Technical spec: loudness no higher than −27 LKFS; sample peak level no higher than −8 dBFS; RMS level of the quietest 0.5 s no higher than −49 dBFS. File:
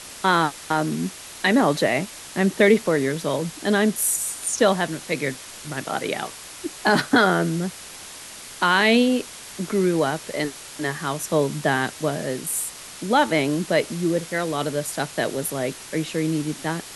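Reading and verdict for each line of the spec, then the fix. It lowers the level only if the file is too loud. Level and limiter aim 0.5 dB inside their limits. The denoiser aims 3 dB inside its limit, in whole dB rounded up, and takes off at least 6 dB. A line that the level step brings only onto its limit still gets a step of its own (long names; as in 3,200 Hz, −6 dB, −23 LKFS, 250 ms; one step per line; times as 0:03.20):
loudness −22.5 LKFS: out of spec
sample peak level −3.5 dBFS: out of spec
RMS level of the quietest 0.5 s −40 dBFS: out of spec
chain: broadband denoise 7 dB, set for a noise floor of −40 dBFS
level −5 dB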